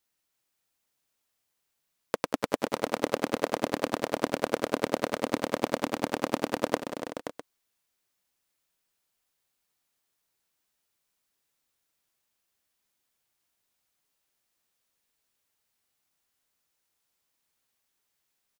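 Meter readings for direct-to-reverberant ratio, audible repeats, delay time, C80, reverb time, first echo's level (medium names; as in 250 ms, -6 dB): no reverb, 5, 186 ms, no reverb, no reverb, -17.0 dB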